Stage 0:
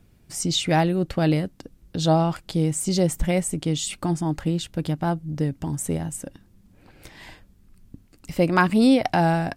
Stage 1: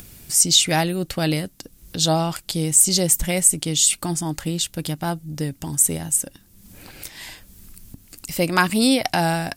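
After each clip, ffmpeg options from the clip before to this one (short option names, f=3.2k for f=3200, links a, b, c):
-af "crystalizer=i=5.5:c=0,acompressor=mode=upward:threshold=-30dB:ratio=2.5,volume=-2dB"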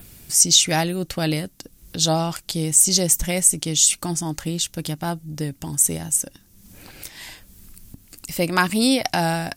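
-af "adynamicequalizer=threshold=0.0158:dfrequency=6000:dqfactor=4.1:tfrequency=6000:tqfactor=4.1:attack=5:release=100:ratio=0.375:range=3.5:mode=boostabove:tftype=bell,volume=-1dB"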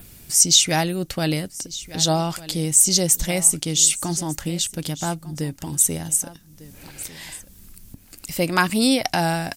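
-af "aecho=1:1:1200:0.133"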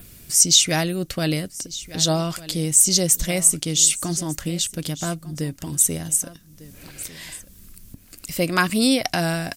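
-af "bandreject=f=850:w=5.1"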